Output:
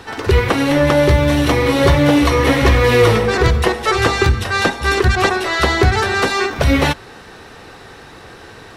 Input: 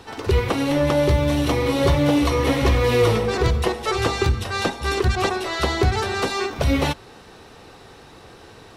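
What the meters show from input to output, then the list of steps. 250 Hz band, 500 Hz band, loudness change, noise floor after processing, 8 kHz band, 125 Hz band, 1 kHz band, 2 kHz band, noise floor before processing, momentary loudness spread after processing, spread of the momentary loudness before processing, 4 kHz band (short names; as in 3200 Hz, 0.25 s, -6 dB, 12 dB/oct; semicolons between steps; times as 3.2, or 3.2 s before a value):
+5.5 dB, +5.5 dB, +6.5 dB, -39 dBFS, +5.5 dB, +5.5 dB, +7.0 dB, +10.0 dB, -45 dBFS, 4 LU, 5 LU, +6.0 dB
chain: bell 1700 Hz +6 dB 0.72 oct; gain +5.5 dB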